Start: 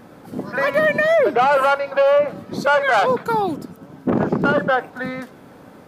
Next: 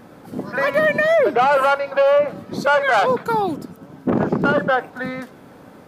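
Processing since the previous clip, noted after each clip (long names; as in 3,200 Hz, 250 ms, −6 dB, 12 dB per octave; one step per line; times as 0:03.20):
no processing that can be heard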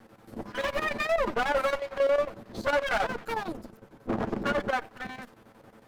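lower of the sound and its delayed copy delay 9 ms
square-wave tremolo 11 Hz, depth 65%, duty 75%
level −8.5 dB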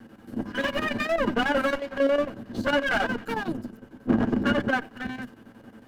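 sub-octave generator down 1 octave, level −4 dB
hollow resonant body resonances 250/1,600/2,900 Hz, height 12 dB, ringing for 35 ms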